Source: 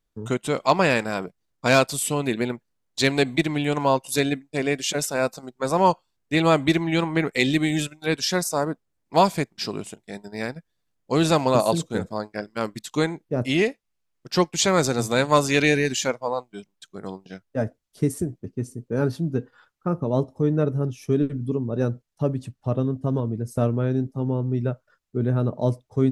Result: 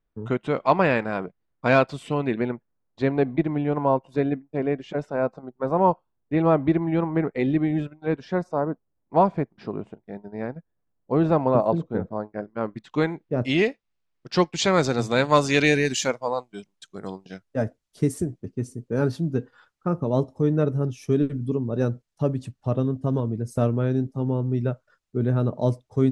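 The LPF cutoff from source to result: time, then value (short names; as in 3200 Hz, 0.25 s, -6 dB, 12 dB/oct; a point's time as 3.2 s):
2.19 s 2200 Hz
3.06 s 1100 Hz
12.55 s 1100 Hz
13.04 s 2700 Hz
13.5 s 4600 Hz
15.19 s 4600 Hz
15.9 s 10000 Hz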